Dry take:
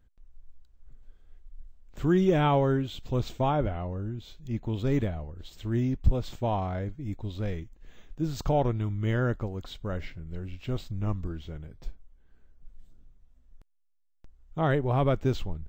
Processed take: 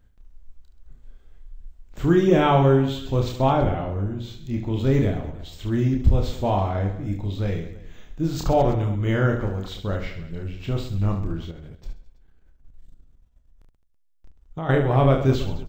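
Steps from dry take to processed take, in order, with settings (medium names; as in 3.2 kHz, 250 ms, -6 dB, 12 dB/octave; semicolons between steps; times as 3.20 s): reverse bouncing-ball echo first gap 30 ms, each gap 1.4×, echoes 5; 11.51–14.74 s: level held to a coarse grid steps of 11 dB; trim +4.5 dB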